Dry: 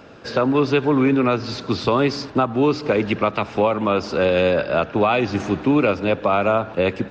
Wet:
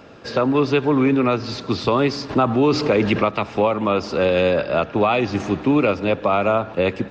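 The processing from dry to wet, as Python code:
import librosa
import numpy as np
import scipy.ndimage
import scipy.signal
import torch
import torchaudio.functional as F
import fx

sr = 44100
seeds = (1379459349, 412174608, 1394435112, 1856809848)

y = fx.notch(x, sr, hz=1500.0, q=18.0)
y = fx.env_flatten(y, sr, amount_pct=50, at=(2.29, 3.23), fade=0.02)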